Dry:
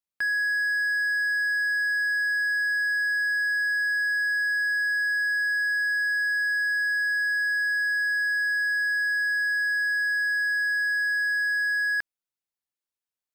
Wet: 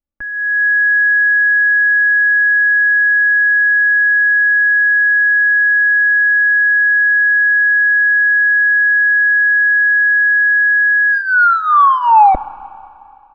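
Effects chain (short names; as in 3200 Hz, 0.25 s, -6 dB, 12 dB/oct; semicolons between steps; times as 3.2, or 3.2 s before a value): tape stop at the end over 2.24 s; LPF 2000 Hz 12 dB/oct; tilt -4.5 dB/oct; comb 3.5 ms, depth 67%; AGC gain up to 16 dB; Schroeder reverb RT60 2.6 s, combs from 27 ms, DRR 17 dB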